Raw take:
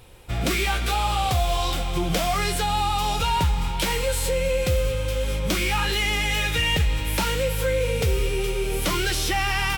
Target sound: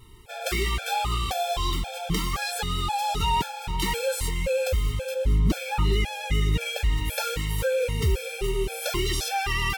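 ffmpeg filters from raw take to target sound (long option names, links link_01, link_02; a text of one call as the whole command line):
ffmpeg -i in.wav -filter_complex "[0:a]asettb=1/sr,asplit=3[link_01][link_02][link_03];[link_01]atrim=end=5.144[link_04];[link_02]atrim=start=5.14:end=6.61,asetpts=PTS-STARTPTS,afade=type=in:duration=0.004:curve=qsin,afade=type=out:start_time=1.466:duration=0.004:curve=qsin,tiltshelf=frequency=650:gain=6.5[link_05];[link_03]atrim=start=6.606[link_06];[link_04][link_05]acrossfade=duration=0.004:curve1=hsin:curve2=qsin[link_07];[link_07][link_06]acrossfade=duration=0.004:curve1=qsin:curve2=hsin,afftfilt=real='re*gt(sin(2*PI*1.9*pts/sr)*(1-2*mod(floor(b*sr/1024/450),2)),0)':imag='im*gt(sin(2*PI*1.9*pts/sr)*(1-2*mod(floor(b*sr/1024/450),2)),0)':win_size=1024:overlap=0.75" out.wav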